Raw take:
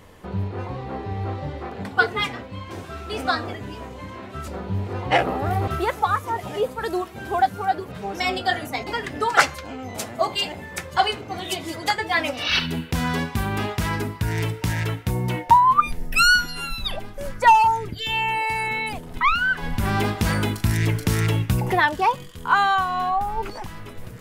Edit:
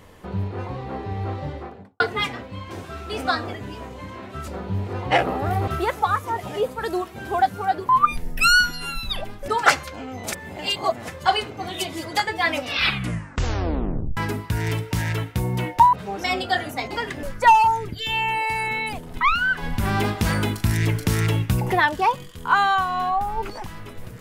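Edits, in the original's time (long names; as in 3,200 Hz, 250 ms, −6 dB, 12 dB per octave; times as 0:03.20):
0:01.48–0:02.00: fade out and dull
0:07.89–0:09.19: swap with 0:15.64–0:17.23
0:10.03–0:10.79: reverse
0:12.39: tape stop 1.49 s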